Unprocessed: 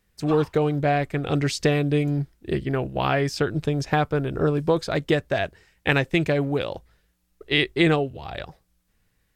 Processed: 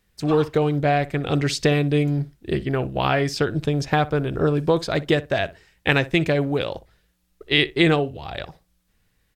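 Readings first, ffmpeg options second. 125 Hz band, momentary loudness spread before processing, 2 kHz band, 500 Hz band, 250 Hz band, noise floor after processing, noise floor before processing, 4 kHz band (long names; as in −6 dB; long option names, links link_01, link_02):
+2.0 dB, 8 LU, +2.0 dB, +1.5 dB, +1.5 dB, −68 dBFS, −70 dBFS, +3.5 dB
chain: -filter_complex "[0:a]equalizer=frequency=3600:width=1.5:gain=2.5,asplit=2[link_01][link_02];[link_02]adelay=61,lowpass=frequency=1800:poles=1,volume=-17dB,asplit=2[link_03][link_04];[link_04]adelay=61,lowpass=frequency=1800:poles=1,volume=0.16[link_05];[link_01][link_03][link_05]amix=inputs=3:normalize=0,volume=1.5dB"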